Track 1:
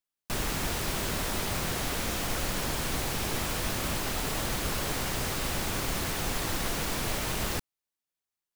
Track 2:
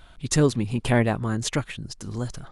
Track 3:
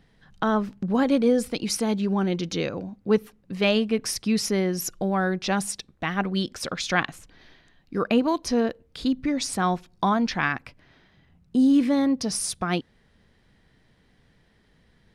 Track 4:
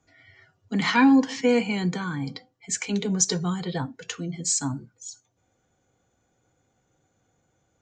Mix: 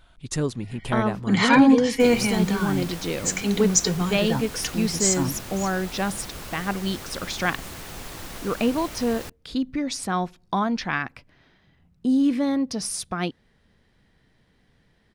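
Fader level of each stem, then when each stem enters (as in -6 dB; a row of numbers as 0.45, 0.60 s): -6.5, -6.0, -1.5, +2.5 dB; 1.70, 0.00, 0.50, 0.55 s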